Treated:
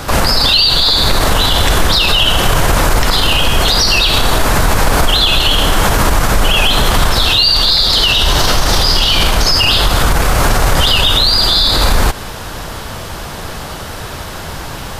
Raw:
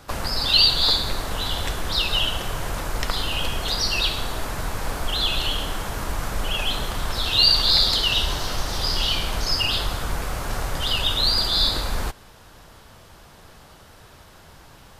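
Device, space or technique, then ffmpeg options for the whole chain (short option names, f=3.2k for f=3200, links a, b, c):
loud club master: -af "acompressor=threshold=-24dB:ratio=3,asoftclip=type=hard:threshold=-15dB,alimiter=level_in=23.5dB:limit=-1dB:release=50:level=0:latency=1,volume=-1dB"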